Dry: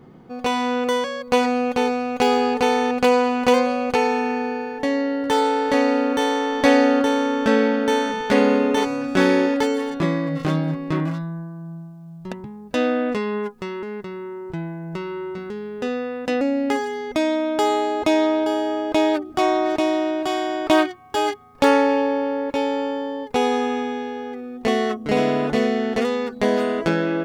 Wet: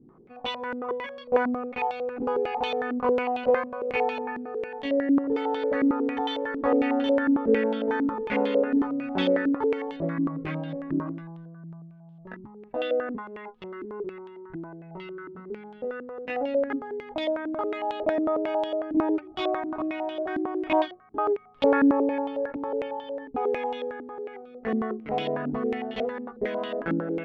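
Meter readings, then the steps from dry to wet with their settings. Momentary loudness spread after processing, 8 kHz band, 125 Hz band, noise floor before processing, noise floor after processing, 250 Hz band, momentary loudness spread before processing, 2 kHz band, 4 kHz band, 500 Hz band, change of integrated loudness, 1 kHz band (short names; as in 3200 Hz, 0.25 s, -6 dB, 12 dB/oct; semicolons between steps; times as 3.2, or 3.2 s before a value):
16 LU, under -25 dB, -10.0 dB, -39 dBFS, -49 dBFS, -6.0 dB, 13 LU, -8.0 dB, -10.0 dB, -6.0 dB, -6.5 dB, -8.0 dB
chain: chorus voices 4, 0.17 Hz, delay 20 ms, depth 2.5 ms; stepped low-pass 11 Hz 290–3300 Hz; gain -8.5 dB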